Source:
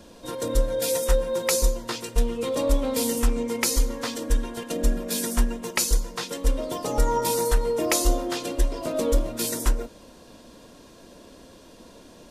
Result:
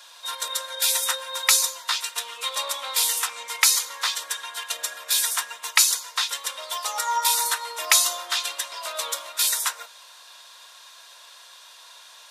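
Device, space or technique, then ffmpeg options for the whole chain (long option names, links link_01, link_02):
headphones lying on a table: -af "highpass=frequency=1000:width=0.5412,highpass=frequency=1000:width=1.3066,equalizer=frequency=3700:width_type=o:width=0.21:gain=7,volume=7dB"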